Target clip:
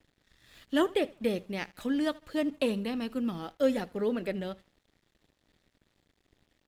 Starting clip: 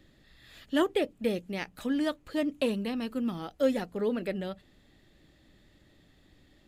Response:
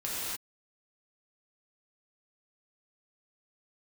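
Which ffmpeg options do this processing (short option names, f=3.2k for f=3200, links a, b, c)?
-af "aecho=1:1:78|156|234:0.0891|0.033|0.0122,aeval=exprs='sgn(val(0))*max(abs(val(0))-0.00112,0)':c=same"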